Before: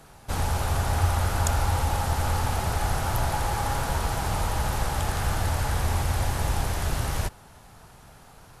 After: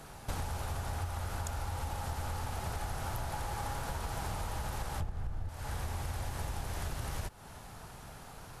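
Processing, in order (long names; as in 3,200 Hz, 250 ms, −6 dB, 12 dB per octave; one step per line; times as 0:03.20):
0:05.00–0:05.49: spectral tilt −3 dB per octave
downward compressor 16 to 1, threshold −34 dBFS, peak gain reduction 27 dB
level +1 dB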